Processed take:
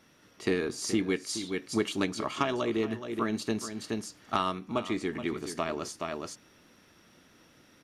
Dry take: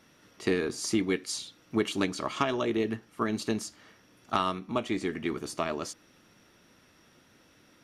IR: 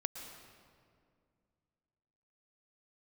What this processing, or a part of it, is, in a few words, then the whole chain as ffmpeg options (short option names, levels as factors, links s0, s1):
ducked delay: -filter_complex "[0:a]asplit=3[s0][s1][s2];[s1]adelay=423,volume=0.75[s3];[s2]apad=whole_len=364304[s4];[s3][s4]sidechaincompress=threshold=0.00891:ratio=4:attack=16:release=254[s5];[s0][s5]amix=inputs=2:normalize=0,volume=0.891"